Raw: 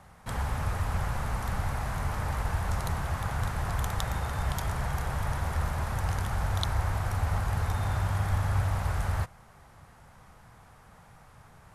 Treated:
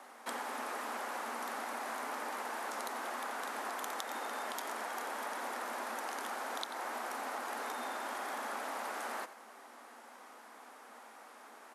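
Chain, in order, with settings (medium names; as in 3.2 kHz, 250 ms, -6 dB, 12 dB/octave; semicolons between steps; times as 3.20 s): steep high-pass 230 Hz 96 dB/octave; compression, threshold -40 dBFS, peak gain reduction 13.5 dB; on a send: delay 89 ms -13.5 dB; on the sum: trim +3 dB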